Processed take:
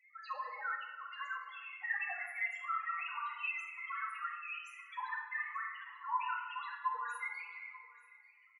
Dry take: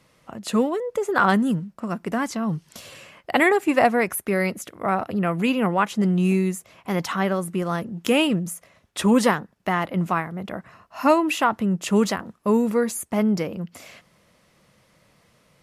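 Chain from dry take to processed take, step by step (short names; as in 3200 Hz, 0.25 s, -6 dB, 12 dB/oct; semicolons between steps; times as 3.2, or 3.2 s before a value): bin magnitudes rounded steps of 15 dB; HPF 1000 Hz 24 dB/oct; de-esser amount 100%; bell 2300 Hz +8.5 dB 1.7 oct; compressor 2:1, threshold -42 dBFS, peak gain reduction 14 dB; loudest bins only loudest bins 1; granular stretch 0.55×, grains 57 ms; on a send: echo 0.889 s -21 dB; on the sum: shoebox room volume 1300 m³, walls mixed, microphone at 2.1 m; gain +7 dB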